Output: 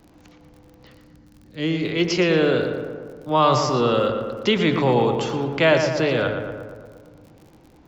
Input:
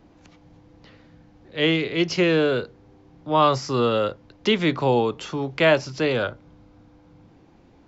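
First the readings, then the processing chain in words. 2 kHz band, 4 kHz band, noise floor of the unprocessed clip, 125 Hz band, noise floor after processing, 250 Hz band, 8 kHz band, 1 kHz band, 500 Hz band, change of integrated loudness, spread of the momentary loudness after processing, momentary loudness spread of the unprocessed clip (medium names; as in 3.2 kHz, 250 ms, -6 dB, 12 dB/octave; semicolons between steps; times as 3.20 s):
+1.0 dB, +0.5 dB, -54 dBFS, +3.0 dB, -51 dBFS, +2.0 dB, no reading, +2.0 dB, +2.0 dB, +1.5 dB, 12 LU, 10 LU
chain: time-frequency box 0.93–1.85 s, 340–4100 Hz -9 dB; transient shaper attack +1 dB, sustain +5 dB; crackle 47 per s -39 dBFS; on a send: filtered feedback delay 116 ms, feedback 67%, low-pass 2.3 kHz, level -5.5 dB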